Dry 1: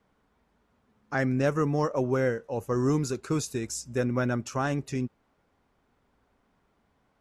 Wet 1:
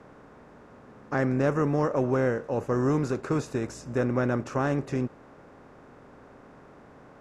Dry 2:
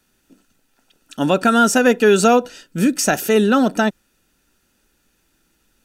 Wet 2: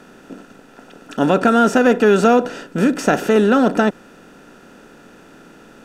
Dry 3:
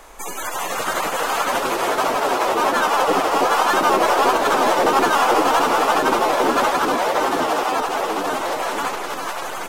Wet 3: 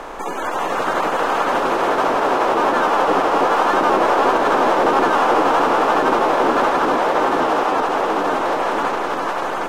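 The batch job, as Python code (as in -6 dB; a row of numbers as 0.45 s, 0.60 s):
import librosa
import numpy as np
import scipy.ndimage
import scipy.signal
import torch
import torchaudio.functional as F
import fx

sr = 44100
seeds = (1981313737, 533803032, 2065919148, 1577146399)

y = fx.bin_compress(x, sr, power=0.6)
y = fx.lowpass(y, sr, hz=1800.0, slope=6)
y = y * 10.0 ** (-1.0 / 20.0)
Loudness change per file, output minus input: +1.0 LU, +0.5 LU, +1.5 LU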